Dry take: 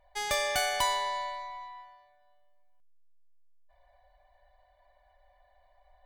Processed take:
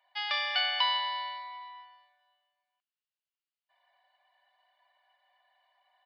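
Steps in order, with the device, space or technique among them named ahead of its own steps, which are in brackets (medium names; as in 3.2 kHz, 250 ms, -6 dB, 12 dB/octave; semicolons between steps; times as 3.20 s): musical greeting card (resampled via 11.025 kHz; high-pass 880 Hz 24 dB/octave; peaking EQ 2.9 kHz +9.5 dB 0.21 oct)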